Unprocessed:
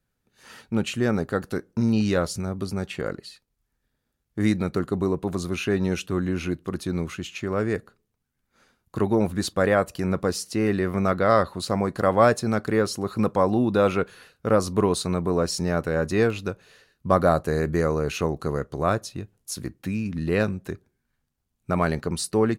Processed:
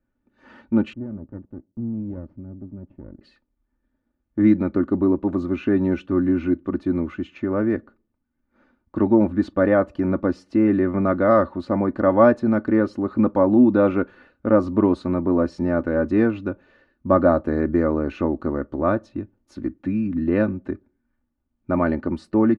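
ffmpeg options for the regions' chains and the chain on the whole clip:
-filter_complex "[0:a]asettb=1/sr,asplit=3[a][b][c];[a]atrim=end=0.934[d];[b]atrim=start=0.93:end=3.21,asetpts=PTS-STARTPTS,afade=t=in:d=0.004:c=qsin,afade=t=out:st=2.276:d=0.004:c=qsin,aeval=exprs='max(val(0),0)':c=same,bandpass=f=120:t=q:w=1.5[e];[c]atrim=start=3.206[f];[d][e]acrossfade=d=0.004:c1=hsin:c2=qsin[g];[g][f]acrossfade=d=0.004:c1=qsin:c2=hsin,lowpass=1.6k,equalizer=f=270:t=o:w=0.8:g=7.5,aecho=1:1:3.4:0.6"

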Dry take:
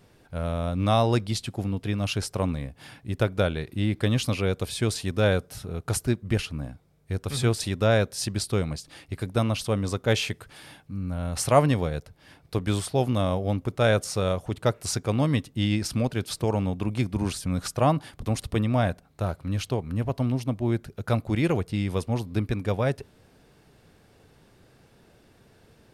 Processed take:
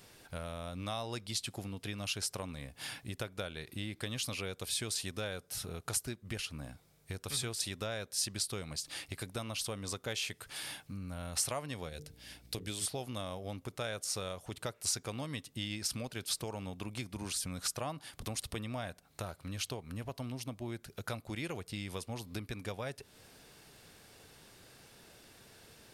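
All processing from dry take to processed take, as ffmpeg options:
-filter_complex "[0:a]asettb=1/sr,asplit=3[a][b][c];[a]atrim=end=11.894[d];[b]atrim=start=11.89:end=12.86,asetpts=PTS-STARTPTS,afade=t=in:d=0.004:c=qsin,afade=t=out:st=0.966:d=0.004:c=qsin,equalizer=f=1.1k:w=1.1:g=-9.5,bandreject=f=50:t=h:w=6,bandreject=f=100:t=h:w=6,bandreject=f=150:t=h:w=6,bandreject=f=200:t=h:w=6,bandreject=f=250:t=h:w=6,bandreject=f=300:t=h:w=6,bandreject=f=350:t=h:w=6,bandreject=f=400:t=h:w=6,bandreject=f=450:t=h:w=6,bandreject=f=500:t=h:w=6,aeval=exprs='val(0)+0.002*(sin(2*PI*60*n/s)+sin(2*PI*2*60*n/s)/2+sin(2*PI*3*60*n/s)/3+sin(2*PI*4*60*n/s)/4+sin(2*PI*5*60*n/s)/5)':c=same[e];[c]atrim=start=12.856[f];[d][e]acrossfade=d=0.004:c1=hsin:c2=qsin[g];[g][f]acrossfade=d=0.004:c1=qsin:c2=hsin,lowshelf=f=460:g=-6,acompressor=threshold=-40dB:ratio=4,highshelf=f=2.7k:g=9.5"

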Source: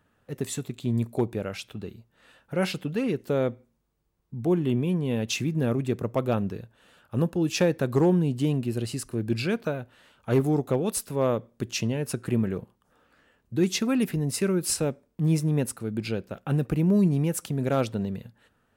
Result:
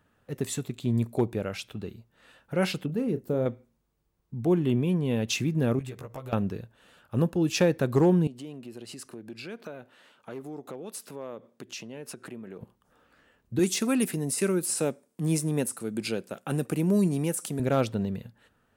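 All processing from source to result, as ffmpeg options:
-filter_complex "[0:a]asettb=1/sr,asplit=3[a][b][c];[a]atrim=end=2.864[d];[b]atrim=start=2.86:end=3.46,asetpts=PTS-STARTPTS,afade=t=in:d=0.004:c=qsin,afade=t=out:st=0.596:d=0.004:c=qsin,equalizer=f=2.9k:w=0.37:g=-13.5,asplit=2[e][f];[f]adelay=32,volume=-10.5dB[g];[e][g]amix=inputs=2:normalize=0,atrim=end_sample=26460[h];[c]atrim=start=3.456[i];[d][h]acrossfade=d=0.004:c1=hsin:c2=qsin[j];[j][i]acrossfade=d=0.004:c1=qsin:c2=hsin,asettb=1/sr,asplit=3[k][l][m];[k]atrim=end=5.794[n];[l]atrim=start=5.79:end=6.33,asetpts=PTS-STARTPTS,afade=t=in:d=0.004:c=qsin,afade=t=out:st=0.536:d=0.004:c=qsin,equalizer=f=260:w=0.76:g=-10.5,acompressor=threshold=-37dB:ratio=8:attack=3.2:release=140:knee=1:detection=peak,asplit=2[o][p];[p]adelay=15,volume=-3dB[q];[o][q]amix=inputs=2:normalize=0,atrim=end_sample=23814[r];[m]atrim=start=6.326[s];[n][r]acrossfade=d=0.004:c1=hsin:c2=qsin[t];[t][s]acrossfade=d=0.004:c1=qsin:c2=hsin,asettb=1/sr,asplit=3[u][v][w];[u]atrim=end=8.274[x];[v]atrim=start=8.27:end=12.61,asetpts=PTS-STARTPTS,afade=t=in:d=0.004:c=qsin,afade=t=out:st=4.336:d=0.004:c=qsin,highshelf=f=9.9k:g=-5,acompressor=threshold=-36dB:ratio=4:attack=3.2:release=140:knee=1:detection=peak,highpass=230[y];[w]atrim=start=12.606[z];[x][y]acrossfade=d=0.004:c1=hsin:c2=qsin[aa];[aa][z]acrossfade=d=0.004:c1=qsin:c2=hsin,asettb=1/sr,asplit=3[ab][ac][ad];[ab]atrim=end=13.594[ae];[ac]atrim=start=13.59:end=17.6,asetpts=PTS-STARTPTS,afade=t=in:d=0.004:c=qsin,afade=t=out:st=4.006:d=0.004:c=qsin,deesser=0.65,highpass=190,equalizer=f=9.1k:w=0.91:g=13[af];[ad]atrim=start=17.596[ag];[ae][af]acrossfade=d=0.004:c1=hsin:c2=qsin[ah];[ah][ag]acrossfade=d=0.004:c1=qsin:c2=hsin"

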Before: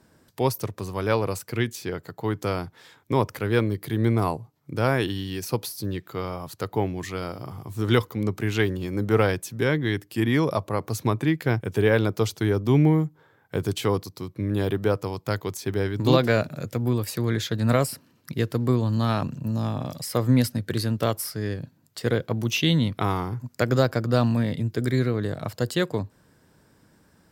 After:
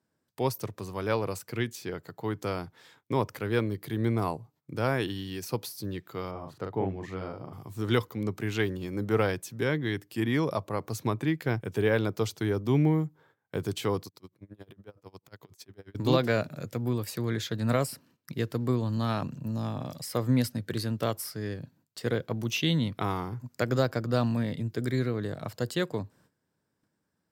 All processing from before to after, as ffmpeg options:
-filter_complex "[0:a]asettb=1/sr,asplit=3[a][b][c];[a]atrim=end=6.314[d];[b]atrim=start=6.31:end=7.53,asetpts=PTS-STARTPTS,afade=t=in:d=0.004:c=qsin,afade=t=out:st=1.216:d=0.004:c=qsin,lowpass=f=1.3k:p=1,asplit=2[e][f];[f]adelay=42,volume=-4dB[g];[e][g]amix=inputs=2:normalize=0,atrim=end_sample=53802[h];[c]atrim=start=7.526[i];[d][h]acrossfade=d=0.004:c1=hsin:c2=qsin[j];[j][i]acrossfade=d=0.004:c1=qsin:c2=hsin,asettb=1/sr,asplit=3[k][l][m];[k]atrim=end=14.074[n];[l]atrim=start=14.07:end=15.95,asetpts=PTS-STARTPTS,afade=t=in:d=0.004:c=qsin,afade=t=out:st=1.876:d=0.004:c=qsin,acompressor=threshold=-32dB:ratio=8:attack=3.2:release=140:knee=1:detection=peak,aeval=exprs='val(0)*pow(10,-27*(0.5-0.5*cos(2*PI*11*n/s))/20)':c=same[o];[m]atrim=start=15.946[p];[n][o]acrossfade=d=0.004:c1=hsin:c2=qsin[q];[q][p]acrossfade=d=0.004:c1=qsin:c2=hsin,highpass=86,equalizer=f=11k:w=6.8:g=-3.5,agate=range=-15dB:threshold=-55dB:ratio=16:detection=peak,volume=-5dB"

